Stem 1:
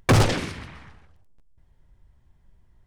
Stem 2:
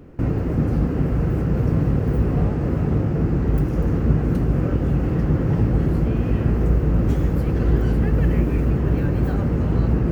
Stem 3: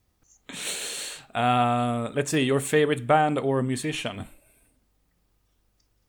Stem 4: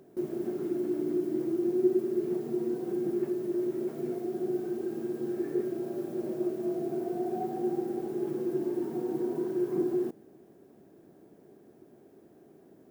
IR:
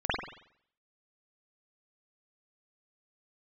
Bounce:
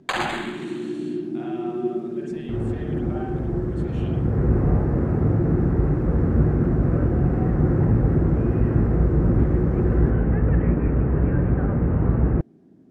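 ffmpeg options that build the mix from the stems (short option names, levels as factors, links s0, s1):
-filter_complex "[0:a]highpass=f=730:w=0.5412,highpass=f=730:w=1.3066,acrusher=samples=8:mix=1:aa=0.000001,volume=0.631,asplit=2[s0][s1];[s1]volume=0.282[s2];[1:a]lowpass=f=2000:w=0.5412,lowpass=f=2000:w=1.3066,adelay=2300,volume=0.841,asplit=2[s3][s4];[s4]volume=0.0891[s5];[2:a]acompressor=threshold=0.00316:ratio=1.5,volume=0.168,asplit=3[s6][s7][s8];[s7]volume=0.596[s9];[3:a]lowshelf=f=330:t=q:w=1.5:g=9.5,volume=0.708[s10];[s8]apad=whole_len=547358[s11];[s3][s11]sidechaincompress=threshold=0.00112:ratio=8:attack=16:release=261[s12];[4:a]atrim=start_sample=2205[s13];[s2][s5][s9]amix=inputs=3:normalize=0[s14];[s14][s13]afir=irnorm=-1:irlink=0[s15];[s0][s12][s6][s10][s15]amix=inputs=5:normalize=0,lowpass=6200"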